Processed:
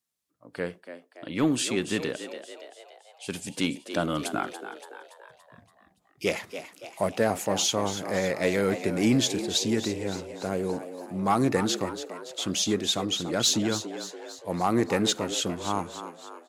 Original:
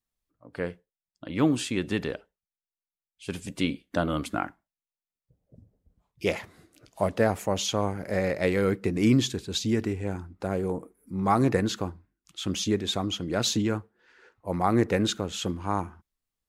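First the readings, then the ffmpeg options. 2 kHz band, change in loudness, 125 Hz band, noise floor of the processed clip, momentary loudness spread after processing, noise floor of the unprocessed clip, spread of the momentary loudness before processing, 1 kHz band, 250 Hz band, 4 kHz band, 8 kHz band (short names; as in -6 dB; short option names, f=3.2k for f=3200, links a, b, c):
+1.0 dB, +0.5 dB, -4.0 dB, -65 dBFS, 17 LU, under -85 dBFS, 13 LU, 0.0 dB, -0.5 dB, +4.0 dB, +6.0 dB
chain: -filter_complex "[0:a]highpass=130,equalizer=f=8.4k:w=0.37:g=6.5,asoftclip=type=tanh:threshold=-12dB,asplit=2[a][b];[b]asplit=6[c][d][e][f][g][h];[c]adelay=285,afreqshift=81,volume=-11dB[i];[d]adelay=570,afreqshift=162,volume=-16.5dB[j];[e]adelay=855,afreqshift=243,volume=-22dB[k];[f]adelay=1140,afreqshift=324,volume=-27.5dB[l];[g]adelay=1425,afreqshift=405,volume=-33.1dB[m];[h]adelay=1710,afreqshift=486,volume=-38.6dB[n];[i][j][k][l][m][n]amix=inputs=6:normalize=0[o];[a][o]amix=inputs=2:normalize=0"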